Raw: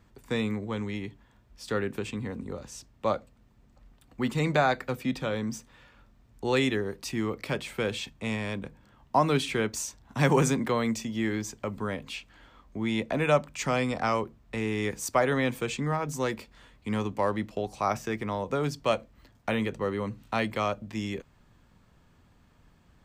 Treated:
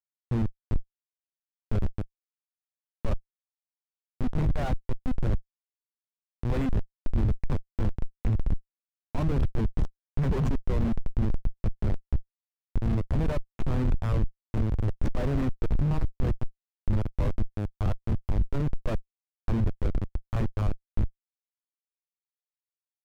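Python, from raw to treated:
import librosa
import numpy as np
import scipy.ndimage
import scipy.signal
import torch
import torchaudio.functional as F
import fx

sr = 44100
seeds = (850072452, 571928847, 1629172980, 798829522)

p1 = fx.dereverb_blind(x, sr, rt60_s=1.1)
p2 = p1 + fx.echo_stepped(p1, sr, ms=625, hz=2500.0, octaves=-1.4, feedback_pct=70, wet_db=-7, dry=0)
p3 = fx.schmitt(p2, sr, flips_db=-26.5)
p4 = fx.riaa(p3, sr, side='playback')
p5 = fx.leveller(p4, sr, passes=2)
y = p5 * librosa.db_to_amplitude(-8.0)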